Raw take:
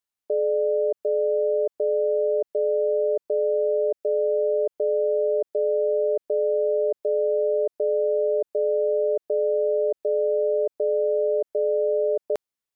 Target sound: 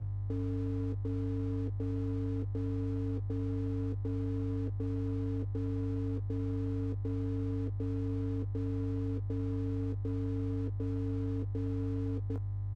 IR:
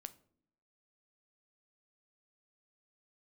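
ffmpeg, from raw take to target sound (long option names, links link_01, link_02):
-filter_complex "[0:a]afwtdn=0.0282,equalizer=frequency=570:width=0.69:gain=-5.5,alimiter=level_in=6.5dB:limit=-24dB:level=0:latency=1,volume=-6.5dB,aeval=exprs='val(0)+0.0158*(sin(2*PI*50*n/s)+sin(2*PI*2*50*n/s)/2+sin(2*PI*3*50*n/s)/3+sin(2*PI*4*50*n/s)/4+sin(2*PI*5*50*n/s)/5)':channel_layout=same,afreqshift=-150,aeval=exprs='sgn(val(0))*max(abs(val(0))-0.002,0)':channel_layout=same,asplit=2[link_01][link_02];[link_02]adelay=19,volume=-7dB[link_03];[link_01][link_03]amix=inputs=2:normalize=0"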